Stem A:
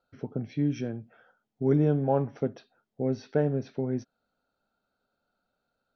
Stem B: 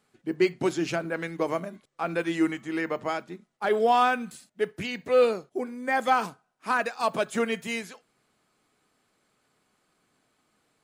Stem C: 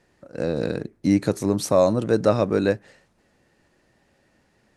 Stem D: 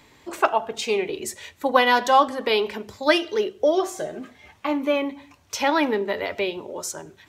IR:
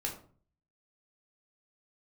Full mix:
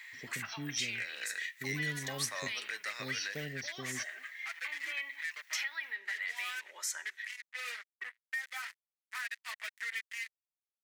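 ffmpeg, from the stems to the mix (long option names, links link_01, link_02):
-filter_complex "[0:a]aemphasis=mode=production:type=50fm,aexciter=amount=5.5:drive=9.1:freq=2500,volume=-14.5dB[link_01];[1:a]flanger=delay=7.6:depth=2.2:regen=5:speed=1.1:shape=sinusoidal,acrusher=bits=4:mix=0:aa=0.5,adelay=2450,volume=-9.5dB[link_02];[2:a]flanger=delay=6.2:depth=5:regen=52:speed=0.6:shape=triangular,adelay=600,volume=1.5dB[link_03];[3:a]acompressor=threshold=-27dB:ratio=2.5,alimiter=limit=-22.5dB:level=0:latency=1:release=21,volume=-3.5dB[link_04];[link_02][link_03][link_04]amix=inputs=3:normalize=0,highpass=frequency=1900:width_type=q:width=7.2,alimiter=limit=-22.5dB:level=0:latency=1:release=408,volume=0dB[link_05];[link_01][link_05]amix=inputs=2:normalize=0,acrossover=split=240|3000[link_06][link_07][link_08];[link_07]acompressor=threshold=-41dB:ratio=2.5[link_09];[link_06][link_09][link_08]amix=inputs=3:normalize=0"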